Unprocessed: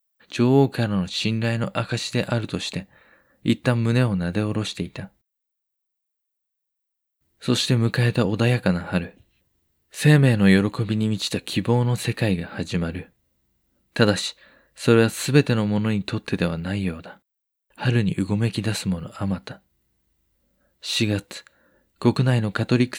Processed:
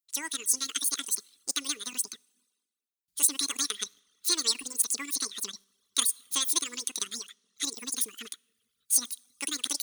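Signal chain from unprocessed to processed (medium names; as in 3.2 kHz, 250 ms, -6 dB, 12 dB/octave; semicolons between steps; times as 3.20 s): amplifier tone stack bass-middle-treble 10-0-10; plate-style reverb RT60 2.8 s, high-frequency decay 0.85×, DRR 14 dB; in parallel at -9.5 dB: bit crusher 8-bit; on the sum: reverb removal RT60 1 s; speed mistake 33 rpm record played at 78 rpm; tilt shelf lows -7.5 dB; trim -4 dB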